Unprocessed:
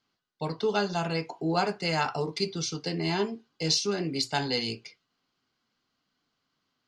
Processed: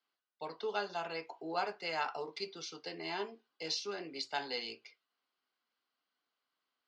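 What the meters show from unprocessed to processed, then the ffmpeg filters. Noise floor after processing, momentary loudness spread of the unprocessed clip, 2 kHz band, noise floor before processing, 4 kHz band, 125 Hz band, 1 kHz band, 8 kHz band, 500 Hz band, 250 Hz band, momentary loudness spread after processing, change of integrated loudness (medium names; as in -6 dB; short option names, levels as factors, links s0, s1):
under -85 dBFS, 8 LU, -7.0 dB, -80 dBFS, -10.0 dB, -25.0 dB, -7.5 dB, -14.5 dB, -10.0 dB, -16.5 dB, 8 LU, -10.0 dB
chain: -af "highpass=460,lowpass=4300,volume=0.447"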